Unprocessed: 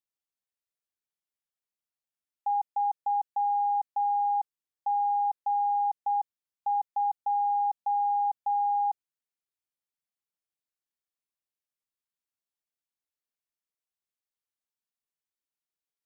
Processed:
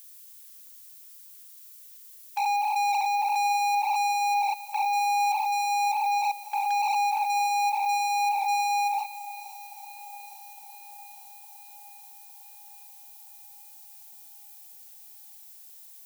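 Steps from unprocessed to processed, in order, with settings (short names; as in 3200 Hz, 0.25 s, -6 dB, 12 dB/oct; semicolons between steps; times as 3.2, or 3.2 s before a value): stepped spectrum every 0.2 s; gate with hold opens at -34 dBFS; tilt -6 dB/oct; sample leveller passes 5; limiter -30.5 dBFS, peak gain reduction 10 dB; added noise violet -56 dBFS; brick-wall FIR high-pass 770 Hz; swung echo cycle 0.859 s, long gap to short 1.5:1, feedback 58%, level -18 dB; gain +7 dB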